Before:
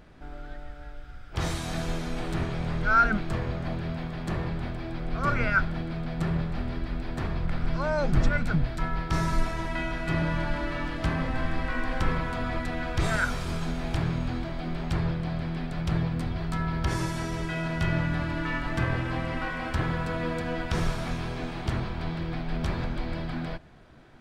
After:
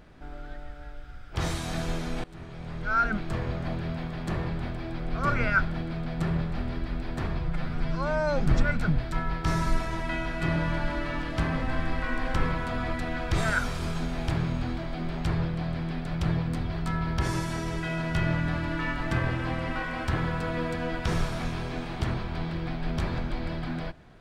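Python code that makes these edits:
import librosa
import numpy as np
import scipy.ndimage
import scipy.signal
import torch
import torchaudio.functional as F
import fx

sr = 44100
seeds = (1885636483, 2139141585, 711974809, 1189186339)

y = fx.edit(x, sr, fx.fade_in_from(start_s=2.24, length_s=1.27, floor_db=-20.5),
    fx.stretch_span(start_s=7.39, length_s=0.68, factor=1.5), tone=tone)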